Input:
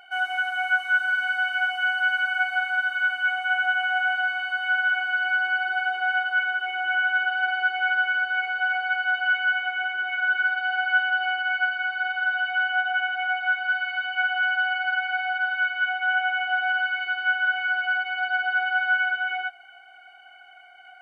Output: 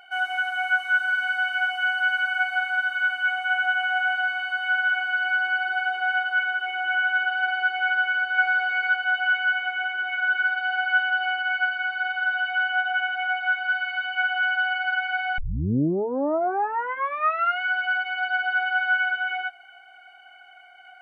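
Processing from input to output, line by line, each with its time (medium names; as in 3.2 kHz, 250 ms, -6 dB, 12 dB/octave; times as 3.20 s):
7.98–8.54 s: echo throw 400 ms, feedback 25%, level -1 dB
15.38 s: tape start 2.24 s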